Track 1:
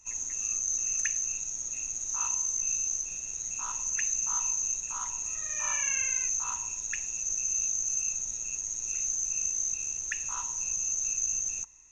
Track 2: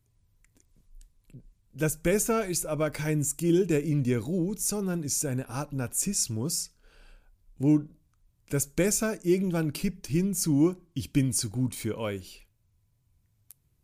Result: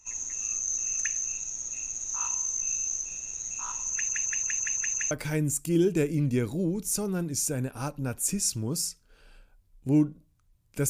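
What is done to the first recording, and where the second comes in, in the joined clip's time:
track 1
0:03.92: stutter in place 0.17 s, 7 plays
0:05.11: continue with track 2 from 0:02.85

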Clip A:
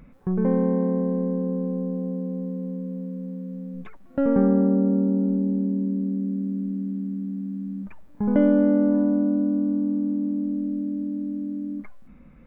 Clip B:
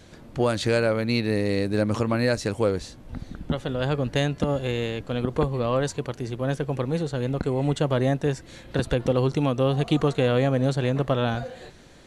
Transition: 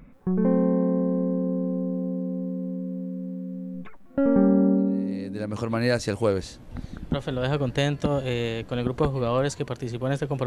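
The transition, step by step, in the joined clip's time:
clip A
0:05.29: continue with clip B from 0:01.67, crossfade 1.18 s quadratic

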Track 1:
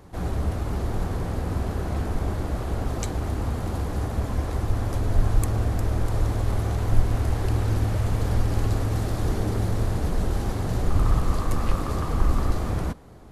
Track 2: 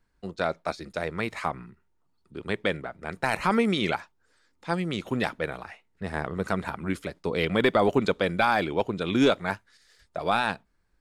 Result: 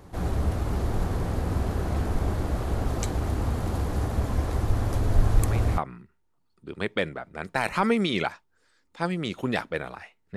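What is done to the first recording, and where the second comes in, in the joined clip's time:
track 1
0:05.38: mix in track 2 from 0:01.06 0.40 s −9.5 dB
0:05.78: continue with track 2 from 0:01.46

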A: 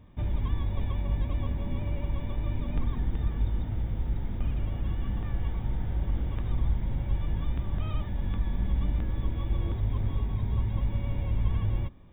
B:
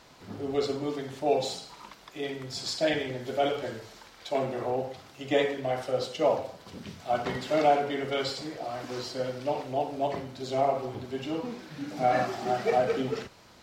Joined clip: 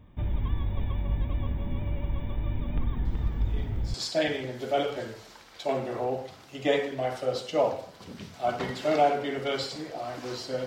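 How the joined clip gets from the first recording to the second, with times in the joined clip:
A
0:03.05: mix in B from 0:01.71 0.89 s −11.5 dB
0:03.94: continue with B from 0:02.60

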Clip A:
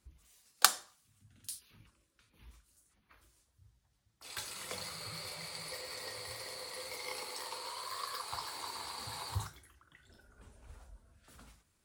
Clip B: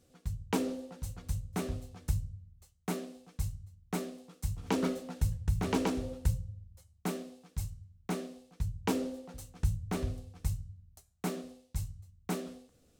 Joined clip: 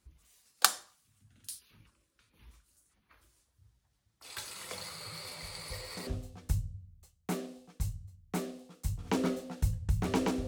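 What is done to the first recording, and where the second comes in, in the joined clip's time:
clip A
0:05.27: mix in clip B from 0:00.86 0.80 s −11.5 dB
0:06.07: continue with clip B from 0:01.66

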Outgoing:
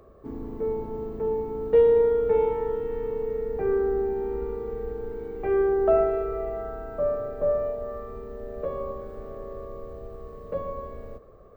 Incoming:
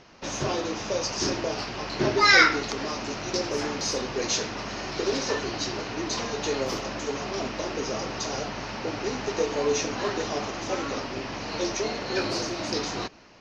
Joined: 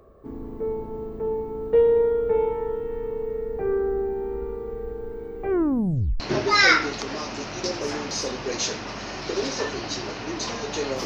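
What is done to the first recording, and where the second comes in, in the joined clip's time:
outgoing
0:05.50: tape stop 0.70 s
0:06.20: continue with incoming from 0:01.90

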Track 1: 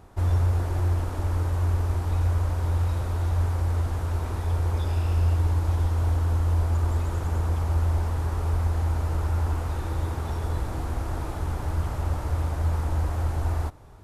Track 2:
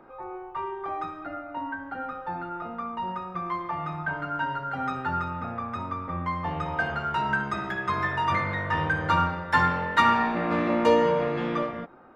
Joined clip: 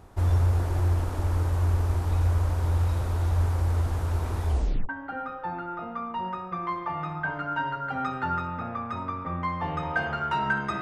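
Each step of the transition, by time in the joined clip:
track 1
0:04.47: tape stop 0.42 s
0:04.89: continue with track 2 from 0:01.72

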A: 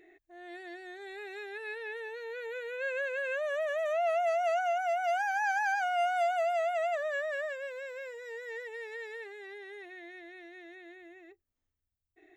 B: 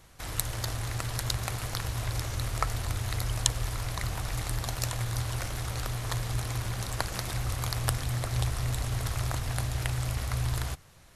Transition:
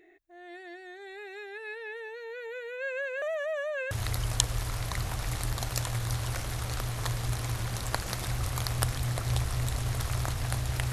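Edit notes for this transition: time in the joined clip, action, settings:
A
0:03.22–0:03.91: reverse
0:03.91: continue with B from 0:02.97

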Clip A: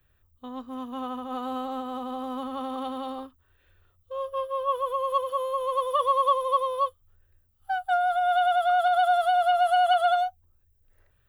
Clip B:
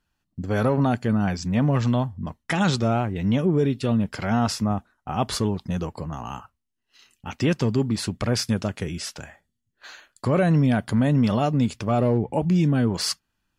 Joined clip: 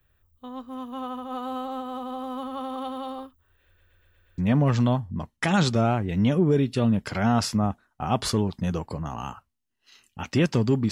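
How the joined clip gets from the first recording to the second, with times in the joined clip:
clip A
0:03.66: stutter in place 0.12 s, 6 plays
0:04.38: continue with clip B from 0:01.45

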